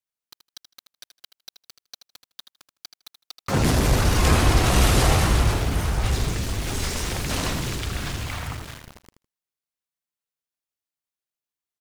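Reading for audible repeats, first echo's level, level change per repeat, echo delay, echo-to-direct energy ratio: 2, -10.0 dB, -16.0 dB, 79 ms, -10.0 dB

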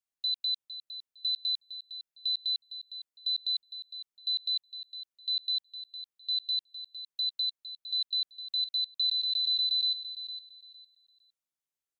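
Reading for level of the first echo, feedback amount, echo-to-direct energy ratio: -12.0 dB, 23%, -12.0 dB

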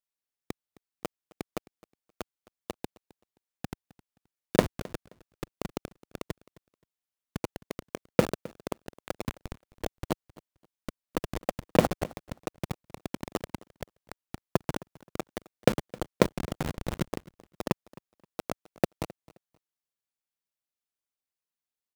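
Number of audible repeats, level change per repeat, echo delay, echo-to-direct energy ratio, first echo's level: 2, -13.0 dB, 263 ms, -21.5 dB, -21.5 dB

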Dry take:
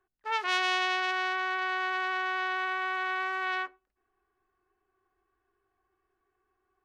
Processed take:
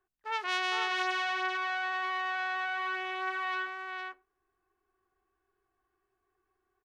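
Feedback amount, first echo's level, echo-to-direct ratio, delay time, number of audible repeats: no regular repeats, -4.5 dB, -4.5 dB, 460 ms, 1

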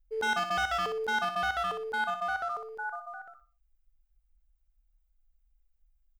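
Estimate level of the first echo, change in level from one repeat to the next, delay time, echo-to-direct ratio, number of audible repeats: -8.0 dB, -11.0 dB, 61 ms, -7.5 dB, 3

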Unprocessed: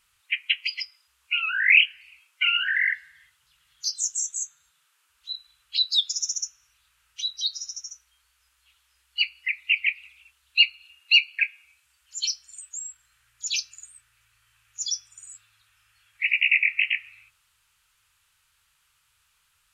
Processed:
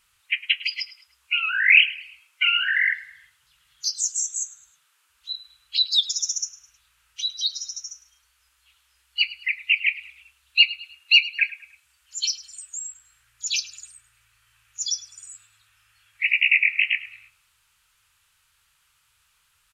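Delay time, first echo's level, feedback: 105 ms, -18.0 dB, 38%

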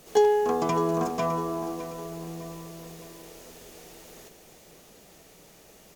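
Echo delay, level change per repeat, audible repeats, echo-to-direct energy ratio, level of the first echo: 609 ms, -7.0 dB, 3, -11.5 dB, -12.5 dB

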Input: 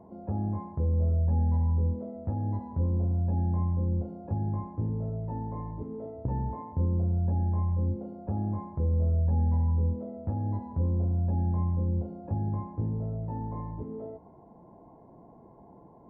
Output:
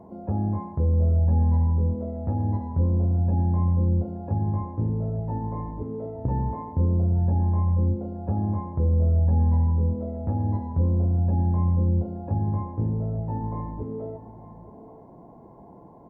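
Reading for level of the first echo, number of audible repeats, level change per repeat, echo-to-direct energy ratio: -15.5 dB, 1, no regular repeats, -15.5 dB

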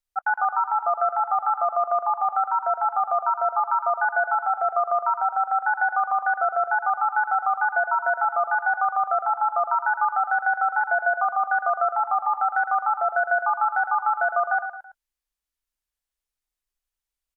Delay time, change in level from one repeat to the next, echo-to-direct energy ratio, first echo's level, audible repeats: 110 ms, -7.5 dB, -8.0 dB, -9.0 dB, 3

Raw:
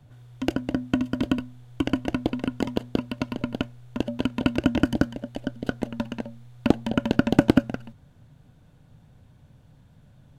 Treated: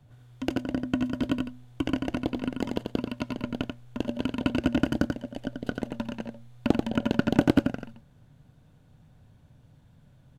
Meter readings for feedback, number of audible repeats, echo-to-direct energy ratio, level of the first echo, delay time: no regular repeats, 1, -5.0 dB, -5.0 dB, 88 ms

